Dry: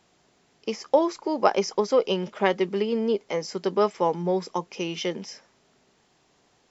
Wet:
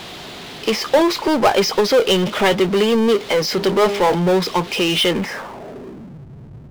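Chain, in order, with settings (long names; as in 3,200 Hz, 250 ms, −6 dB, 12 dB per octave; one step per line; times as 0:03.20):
0:03.48–0:04.15: hum removal 67.33 Hz, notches 14
low-pass filter sweep 3,700 Hz → 130 Hz, 0:05.02–0:06.24
power curve on the samples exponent 0.5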